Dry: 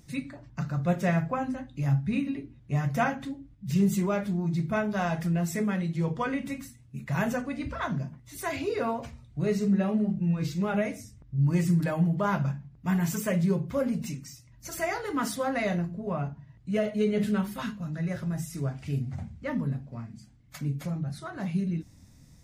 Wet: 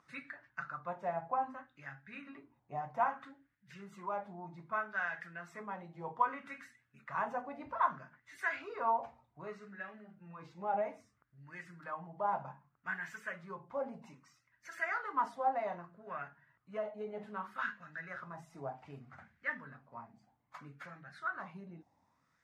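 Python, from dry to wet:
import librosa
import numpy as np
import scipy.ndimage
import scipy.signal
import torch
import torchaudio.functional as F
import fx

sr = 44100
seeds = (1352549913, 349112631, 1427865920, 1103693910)

y = fx.rider(x, sr, range_db=5, speed_s=0.5)
y = fx.wah_lfo(y, sr, hz=0.63, low_hz=800.0, high_hz=1700.0, q=4.8)
y = F.gain(torch.from_numpy(y), 4.0).numpy()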